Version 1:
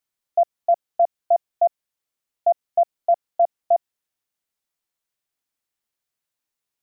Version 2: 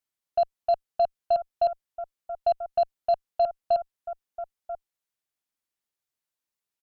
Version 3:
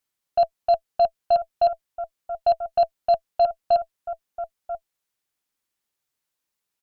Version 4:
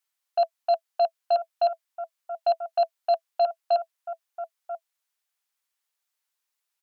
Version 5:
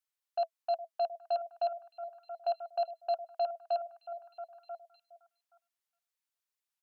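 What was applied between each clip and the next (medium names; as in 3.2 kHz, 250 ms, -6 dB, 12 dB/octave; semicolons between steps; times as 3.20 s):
delay 988 ms -12.5 dB; Chebyshev shaper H 6 -27 dB, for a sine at -11 dBFS; trim -5 dB
band-stop 660 Hz, Q 19; trim +6 dB
high-pass 720 Hz 12 dB/octave
repeats whose band climbs or falls 412 ms, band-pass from 490 Hz, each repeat 1.4 oct, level -11 dB; trim -9 dB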